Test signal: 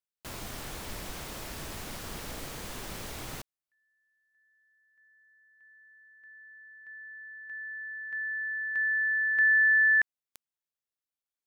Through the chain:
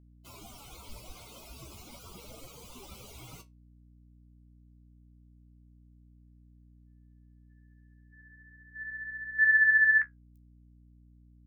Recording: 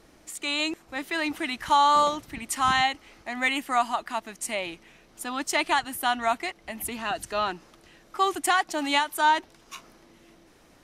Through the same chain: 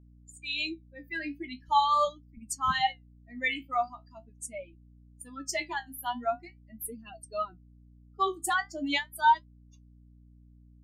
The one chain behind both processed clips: expander on every frequency bin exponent 3; flange 0.42 Hz, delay 8.9 ms, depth 10 ms, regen +48%; hum 60 Hz, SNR 23 dB; trim +4 dB

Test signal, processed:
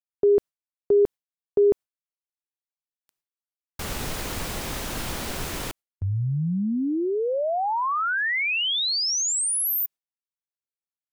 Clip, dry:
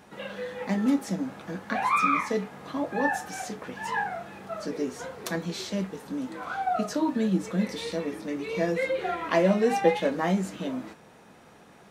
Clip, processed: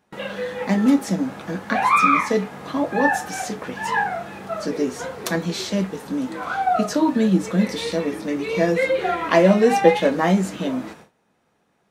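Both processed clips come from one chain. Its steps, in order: gate with hold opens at -39 dBFS; trim +7.5 dB

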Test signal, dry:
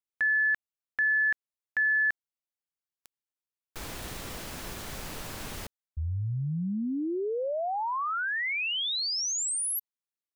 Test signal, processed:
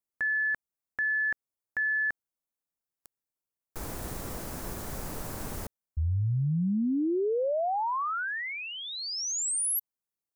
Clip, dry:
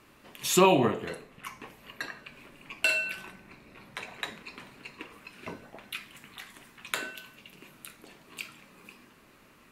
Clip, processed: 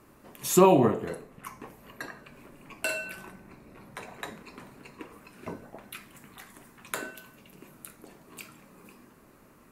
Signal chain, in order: peaking EQ 3.1 kHz -12 dB 1.8 oct; trim +3.5 dB

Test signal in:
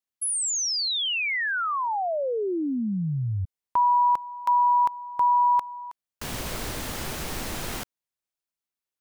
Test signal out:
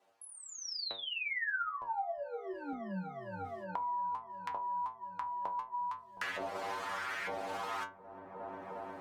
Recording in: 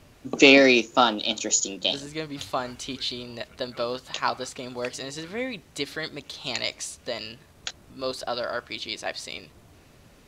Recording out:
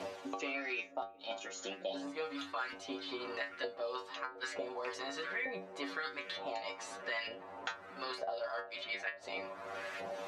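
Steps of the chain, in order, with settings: reverse; compression 10:1, threshold -33 dBFS; reverse; LFO band-pass saw up 1.1 Hz 600–2000 Hz; inverted gate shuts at -30 dBFS, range -39 dB; inharmonic resonator 93 Hz, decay 0.34 s, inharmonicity 0.002; on a send: feedback echo behind a low-pass 358 ms, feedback 78%, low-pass 650 Hz, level -17.5 dB; on the sum: three bands compressed up and down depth 100%; trim +17.5 dB

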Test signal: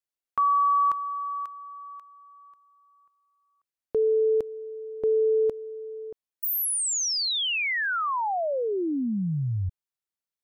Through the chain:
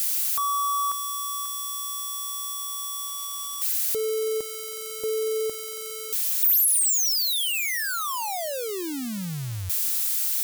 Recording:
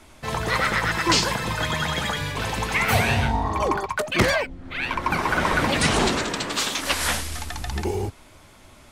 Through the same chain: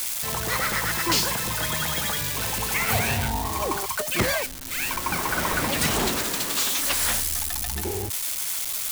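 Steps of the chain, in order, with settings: zero-crossing glitches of -14.5 dBFS; trim -4.5 dB

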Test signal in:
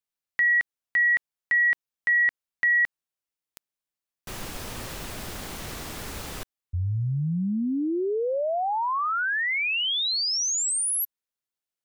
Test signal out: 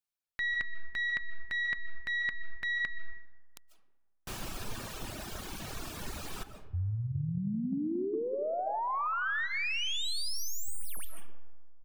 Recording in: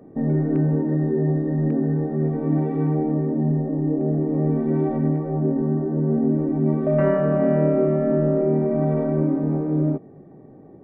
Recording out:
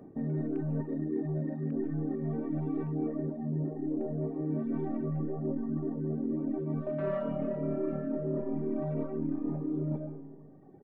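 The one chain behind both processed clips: tracing distortion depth 0.043 ms; speakerphone echo 110 ms, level -27 dB; algorithmic reverb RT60 1.6 s, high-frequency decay 0.35×, pre-delay 105 ms, DRR 3.5 dB; reverb removal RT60 1.8 s; peaking EQ 510 Hz -3.5 dB 0.51 oct; band-stop 2 kHz, Q 11; dynamic bell 820 Hz, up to -4 dB, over -47 dBFS, Q 4.2; reverse; compression 6:1, threshold -27 dBFS; reverse; trim -2.5 dB

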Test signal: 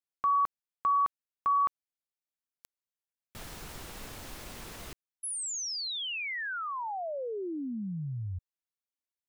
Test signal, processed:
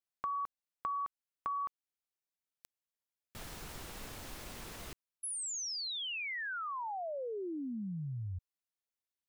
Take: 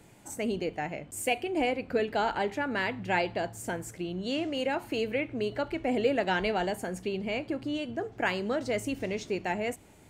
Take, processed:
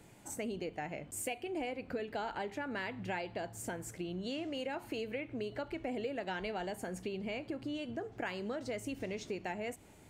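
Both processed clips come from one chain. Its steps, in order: compression 4:1, threshold -34 dBFS; trim -2.5 dB

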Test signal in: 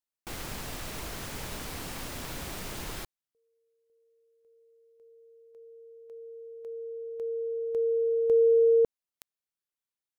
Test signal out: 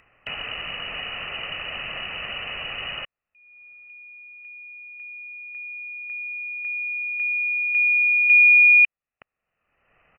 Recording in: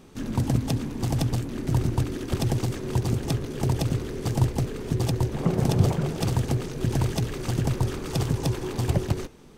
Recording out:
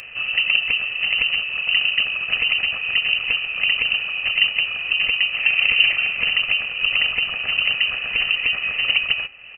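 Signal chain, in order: frequency inversion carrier 2.9 kHz; in parallel at -2 dB: upward compressor, threshold -28 dBFS; on the sum: comb 1.6 ms, depth 41%

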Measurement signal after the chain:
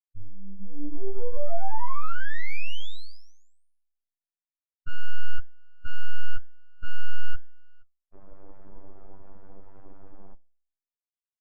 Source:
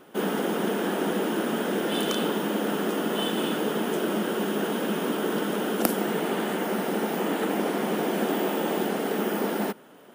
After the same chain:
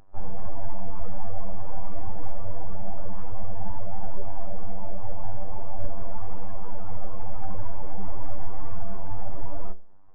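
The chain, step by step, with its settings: local Wiener filter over 25 samples; low-pass 1.6 kHz 24 dB/octave; peaking EQ 83 Hz -14 dB 1.1 oct; hum notches 50/100/150/200/250 Hz; full-wave rectifier; in parallel at -1 dB: compression, threshold -38 dBFS; on the sum: robot voice 97.4 Hz; overload inside the chain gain 23.5 dB; flange 0.9 Hz, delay 6.4 ms, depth 8.7 ms, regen +88%; spectral contrast expander 1.5:1; trim +15 dB

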